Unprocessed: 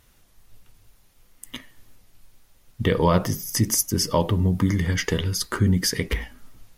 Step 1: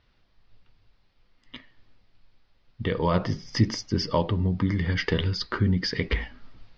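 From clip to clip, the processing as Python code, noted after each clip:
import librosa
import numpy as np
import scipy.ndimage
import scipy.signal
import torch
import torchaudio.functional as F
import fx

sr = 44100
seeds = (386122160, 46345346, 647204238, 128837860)

y = scipy.signal.sosfilt(scipy.signal.ellip(4, 1.0, 60, 4800.0, 'lowpass', fs=sr, output='sos'), x)
y = fx.rider(y, sr, range_db=10, speed_s=0.5)
y = F.gain(torch.from_numpy(y), -1.5).numpy()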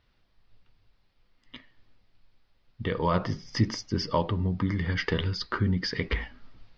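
y = fx.dynamic_eq(x, sr, hz=1200.0, q=1.4, threshold_db=-42.0, ratio=4.0, max_db=4)
y = F.gain(torch.from_numpy(y), -3.0).numpy()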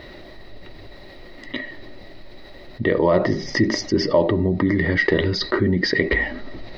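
y = fx.small_body(x, sr, hz=(360.0, 580.0, 1900.0, 3900.0), ring_ms=25, db=17)
y = fx.env_flatten(y, sr, amount_pct=50)
y = F.gain(torch.from_numpy(y), -4.0).numpy()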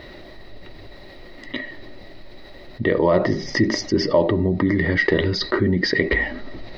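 y = x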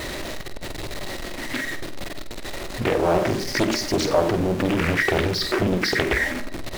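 y = x + 0.5 * 10.0 ** (-22.5 / 20.0) * np.sign(x)
y = fx.room_flutter(y, sr, wall_m=8.2, rt60_s=0.33)
y = fx.doppler_dist(y, sr, depth_ms=0.84)
y = F.gain(torch.from_numpy(y), -4.0).numpy()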